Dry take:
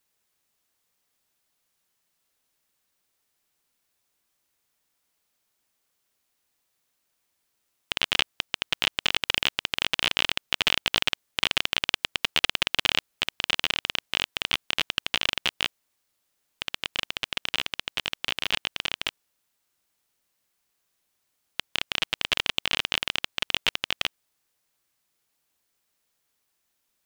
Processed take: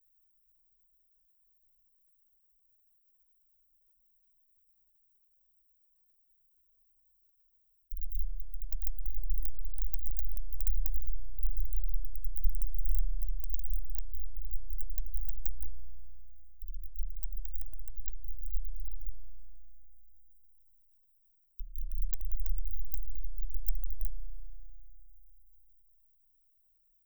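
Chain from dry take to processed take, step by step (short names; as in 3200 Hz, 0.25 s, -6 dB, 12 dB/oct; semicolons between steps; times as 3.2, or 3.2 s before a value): median-filter separation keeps percussive; inverse Chebyshev band-stop 150–8000 Hz, stop band 70 dB; tone controls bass +9 dB, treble +2 dB; reverb RT60 2.8 s, pre-delay 33 ms, DRR 2.5 dB; gain +15 dB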